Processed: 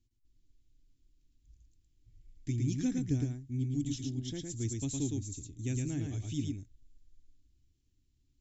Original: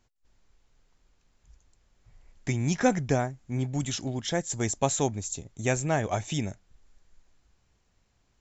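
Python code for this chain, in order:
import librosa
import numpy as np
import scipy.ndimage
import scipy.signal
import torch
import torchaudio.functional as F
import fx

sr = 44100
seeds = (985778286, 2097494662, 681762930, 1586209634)

y = fx.curve_eq(x, sr, hz=(120.0, 200.0, 290.0, 570.0, 1100.0, 3300.0), db=(0, -10, 3, -27, -28, -8))
y = y + 10.0 ** (-3.5 / 20.0) * np.pad(y, (int(111 * sr / 1000.0), 0))[:len(y)]
y = F.gain(torch.from_numpy(y), -3.5).numpy()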